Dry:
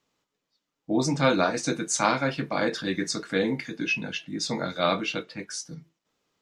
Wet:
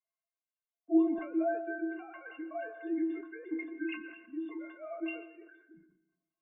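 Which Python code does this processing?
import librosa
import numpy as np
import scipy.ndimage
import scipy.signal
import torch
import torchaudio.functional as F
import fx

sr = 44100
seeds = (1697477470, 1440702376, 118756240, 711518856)

y = fx.sine_speech(x, sr)
y = scipy.signal.sosfilt(scipy.signal.butter(8, 2800.0, 'lowpass', fs=sr, output='sos'), y)
y = fx.high_shelf(y, sr, hz=2100.0, db=-8.0)
y = fx.stiff_resonator(y, sr, f0_hz=320.0, decay_s=0.35, stiffness=0.03)
y = fx.rev_plate(y, sr, seeds[0], rt60_s=1.0, hf_ratio=0.5, predelay_ms=105, drr_db=11.5)
y = fx.sustainer(y, sr, db_per_s=79.0)
y = F.gain(torch.from_numpy(y), 3.0).numpy()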